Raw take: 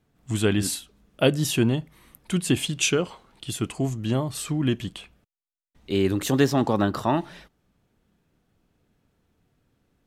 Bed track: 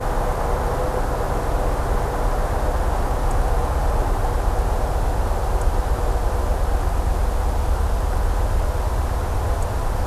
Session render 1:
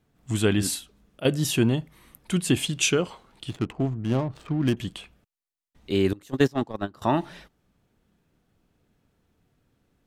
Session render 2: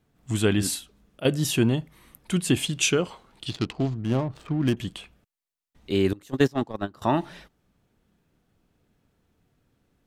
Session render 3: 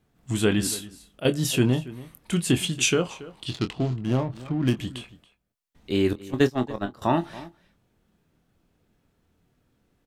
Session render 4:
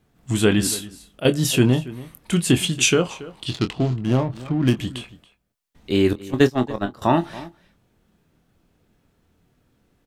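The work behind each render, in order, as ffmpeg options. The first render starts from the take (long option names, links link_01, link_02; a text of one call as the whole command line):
ffmpeg -i in.wav -filter_complex "[0:a]asettb=1/sr,asplit=3[link_01][link_02][link_03];[link_01]atrim=end=3.494[link_04];[link_02]atrim=start=3.49:end=4.77,asetpts=PTS-STARTPTS,afade=type=in:duration=0.004:curve=qsin,afade=type=out:start_time=1.276:duration=0.004:curve=qsin,adynamicsmooth=sensitivity=5:basefreq=530[link_05];[link_03]atrim=start=4.766[link_06];[link_04][link_05]acrossfade=duration=0.004:curve1=hsin:curve2=qsin[link_07];[link_07][link_06]acrossfade=duration=0.004:curve1=qsin:curve2=hsin,asettb=1/sr,asplit=3[link_08][link_09][link_10];[link_08]atrim=end=6.134[link_11];[link_09]atrim=start=6.13:end=7.02,asetpts=PTS-STARTPTS,afade=type=in:duration=0.004:curve=qsin,afade=type=out:start_time=0.886:duration=0.004:curve=qsin,agate=range=-22dB:threshold=-20dB:ratio=16:release=100:detection=peak[link_12];[link_10]atrim=start=7.016[link_13];[link_11][link_12]acrossfade=duration=0.004:curve1=hsin:curve2=qsin[link_14];[link_14][link_13]acrossfade=duration=0.004:curve1=qsin:curve2=hsin,asplit=3[link_15][link_16][link_17];[link_15]atrim=end=1.2,asetpts=PTS-STARTPTS,afade=type=out:start_time=0.76:duration=0.44:curve=log:silence=0.211349[link_18];[link_16]atrim=start=1.2:end=1.25,asetpts=PTS-STARTPTS,volume=-13.5dB[link_19];[link_17]atrim=start=1.25,asetpts=PTS-STARTPTS,afade=type=in:duration=0.44:curve=log:silence=0.211349[link_20];[link_18][link_19][link_20]concat=n=3:v=0:a=1" out.wav
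ffmpeg -i in.wav -filter_complex "[0:a]asettb=1/sr,asplit=3[link_01][link_02][link_03];[link_01]atrim=end=3.464[link_04];[link_02]atrim=start=3.46:end=4.02,asetpts=PTS-STARTPTS,afade=type=in:duration=0.004:curve=qsin,afade=type=out:start_time=0.556:duration=0.004:curve=qsin,equalizer=frequency=4500:width=1.3:gain=15[link_05];[link_03]atrim=start=4.016[link_06];[link_04][link_05]acrossfade=duration=0.004:curve1=hsin:curve2=qsin[link_07];[link_07][link_06]acrossfade=duration=0.004:curve1=qsin:curve2=hsin" out.wav
ffmpeg -i in.wav -filter_complex "[0:a]asplit=2[link_01][link_02];[link_02]adelay=24,volume=-9dB[link_03];[link_01][link_03]amix=inputs=2:normalize=0,asplit=2[link_04][link_05];[link_05]adelay=279.9,volume=-18dB,highshelf=frequency=4000:gain=-6.3[link_06];[link_04][link_06]amix=inputs=2:normalize=0" out.wav
ffmpeg -i in.wav -af "volume=4.5dB" out.wav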